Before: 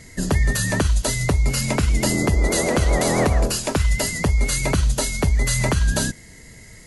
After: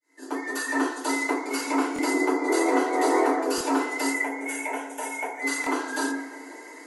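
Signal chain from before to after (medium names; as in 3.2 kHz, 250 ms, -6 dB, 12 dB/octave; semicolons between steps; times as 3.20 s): fade-in on the opening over 1.12 s; peak limiter -17 dBFS, peak gain reduction 8.5 dB; 4.12–5.42 s: static phaser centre 1.2 kHz, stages 6; rippled Chebyshev high-pass 260 Hz, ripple 9 dB; on a send: tape echo 175 ms, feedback 86%, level -13.5 dB, low-pass 1.8 kHz; on the sum: FDN reverb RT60 0.63 s, low-frequency decay 1×, high-frequency decay 0.3×, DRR -8.5 dB; buffer glitch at 1.94/3.56/5.62 s, samples 1024, times 1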